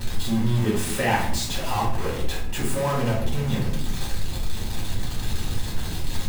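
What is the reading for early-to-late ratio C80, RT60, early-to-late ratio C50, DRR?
9.0 dB, no single decay rate, 5.0 dB, -5.5 dB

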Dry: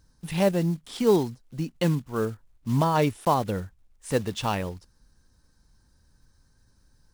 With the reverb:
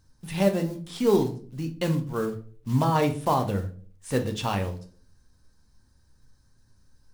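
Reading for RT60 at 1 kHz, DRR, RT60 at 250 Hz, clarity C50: 0.40 s, 4.0 dB, 0.60 s, 13.0 dB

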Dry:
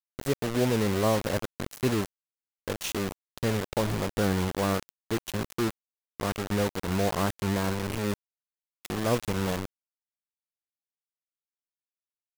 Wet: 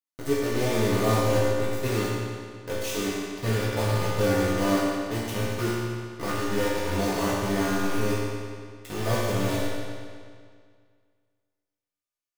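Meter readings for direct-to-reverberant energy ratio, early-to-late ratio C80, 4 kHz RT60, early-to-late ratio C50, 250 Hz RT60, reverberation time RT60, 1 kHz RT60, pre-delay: -9.0 dB, -0.5 dB, 1.8 s, -2.5 dB, 2.0 s, 2.0 s, 2.0 s, 3 ms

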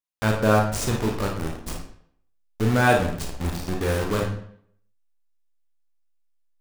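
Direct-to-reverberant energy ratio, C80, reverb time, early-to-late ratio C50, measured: 0.5 dB, 9.0 dB, 0.65 s, 4.0 dB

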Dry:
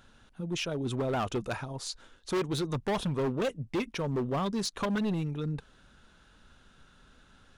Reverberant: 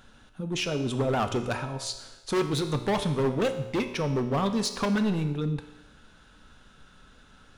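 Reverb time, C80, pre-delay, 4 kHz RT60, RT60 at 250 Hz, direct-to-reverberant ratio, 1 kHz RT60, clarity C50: 1.0 s, 12.0 dB, 3 ms, 1.0 s, 1.0 s, 7.0 dB, 1.0 s, 10.0 dB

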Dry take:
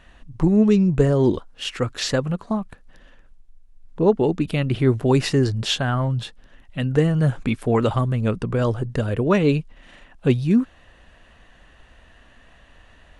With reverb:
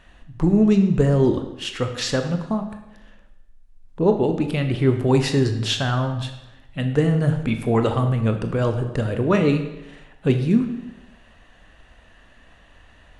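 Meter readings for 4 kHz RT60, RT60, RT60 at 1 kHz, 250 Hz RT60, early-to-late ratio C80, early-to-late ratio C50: 0.80 s, 0.95 s, 0.95 s, 0.95 s, 10.5 dB, 8.5 dB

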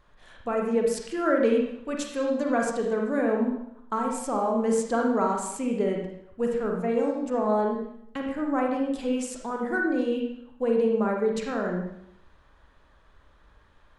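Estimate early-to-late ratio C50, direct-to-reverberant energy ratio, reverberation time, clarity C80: 2.5 dB, 0.0 dB, 0.75 s, 5.5 dB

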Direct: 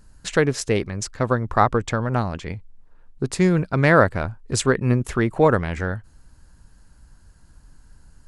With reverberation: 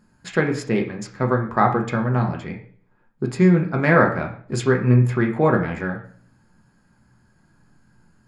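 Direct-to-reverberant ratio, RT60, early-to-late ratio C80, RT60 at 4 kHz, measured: 0.5 dB, 0.50 s, 13.0 dB, 0.45 s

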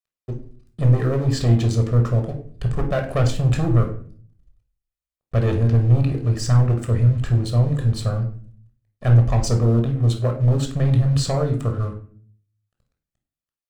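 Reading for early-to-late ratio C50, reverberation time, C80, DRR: 8.5 dB, 0.50 s, 13.5 dB, 3.0 dB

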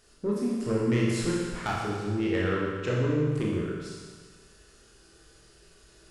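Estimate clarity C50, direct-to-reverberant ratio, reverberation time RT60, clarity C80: -0.5 dB, -4.5 dB, 1.6 s, 1.5 dB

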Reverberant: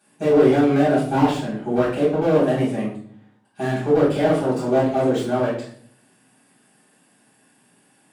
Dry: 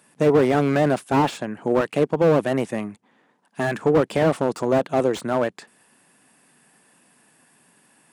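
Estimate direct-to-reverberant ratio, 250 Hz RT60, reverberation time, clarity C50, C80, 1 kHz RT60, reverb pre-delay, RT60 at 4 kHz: -9.0 dB, 0.80 s, 0.55 s, 4.0 dB, 8.5 dB, 0.45 s, 3 ms, 0.50 s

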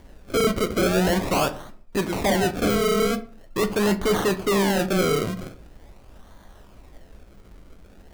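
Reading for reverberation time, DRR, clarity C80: 0.45 s, 8.0 dB, 20.0 dB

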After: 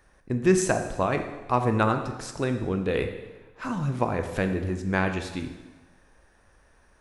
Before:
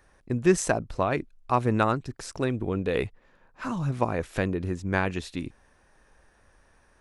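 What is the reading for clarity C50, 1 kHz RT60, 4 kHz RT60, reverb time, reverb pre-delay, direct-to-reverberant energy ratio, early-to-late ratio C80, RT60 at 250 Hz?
8.0 dB, 1.2 s, 1.1 s, 1.2 s, 7 ms, 6.0 dB, 10.0 dB, 1.2 s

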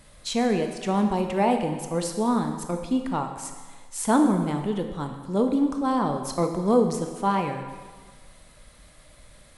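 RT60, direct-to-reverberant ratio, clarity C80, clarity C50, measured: 1.5 s, 5.0 dB, 8.0 dB, 6.5 dB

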